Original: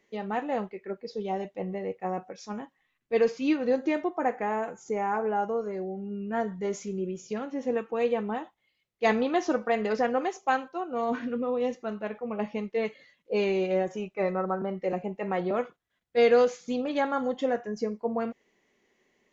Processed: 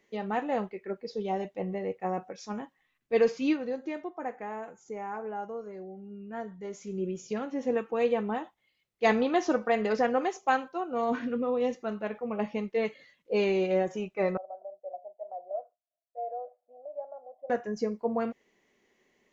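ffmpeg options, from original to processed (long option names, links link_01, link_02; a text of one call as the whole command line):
ffmpeg -i in.wav -filter_complex "[0:a]asettb=1/sr,asplit=3[link_01][link_02][link_03];[link_01]atrim=end=14.374[link_04];[link_02]atrim=start=14.37:end=17.5,asetpts=PTS-STARTPTS,afade=type=in:duration=0.004:curve=qsin,afade=type=out:start_time=3.126:duration=0.004:curve=qsin,asuperpass=centerf=650:order=4:qfactor=5.8[link_05];[link_03]atrim=start=17.496[link_06];[link_04][link_05]acrossfade=duration=0.004:curve1=hsin:curve2=qsin[link_07];[link_07][link_06]acrossfade=duration=0.004:curve1=qsin:curve2=hsin,asplit=3[link_08][link_09][link_10];[link_08]atrim=end=3.7,asetpts=PTS-STARTPTS,afade=type=out:start_time=3.44:duration=0.26:silence=0.375837[link_11];[link_09]atrim=start=3.7:end=6.78,asetpts=PTS-STARTPTS,volume=-8.5dB[link_12];[link_10]atrim=start=6.78,asetpts=PTS-STARTPTS,afade=type=in:duration=0.26:silence=0.375837[link_13];[link_11][link_12][link_13]concat=n=3:v=0:a=1" out.wav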